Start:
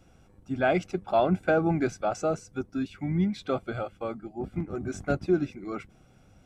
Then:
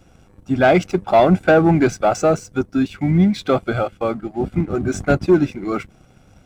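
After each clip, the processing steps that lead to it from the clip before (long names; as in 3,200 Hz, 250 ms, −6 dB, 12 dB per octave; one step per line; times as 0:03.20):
leveller curve on the samples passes 1
level +8.5 dB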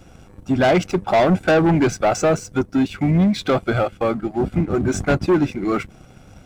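in parallel at −2 dB: downward compressor, threshold −24 dBFS, peak gain reduction 14 dB
on the sum: soft clipping −11 dBFS, distortion −14 dB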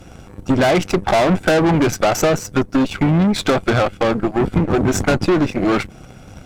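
downward compressor, threshold −19 dBFS, peak gain reduction 6 dB
harmonic generator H 6 −15 dB, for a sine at −12.5 dBFS
level +6 dB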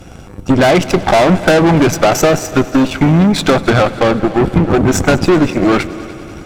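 echo machine with several playback heads 98 ms, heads all three, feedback 65%, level −22 dB
level +5 dB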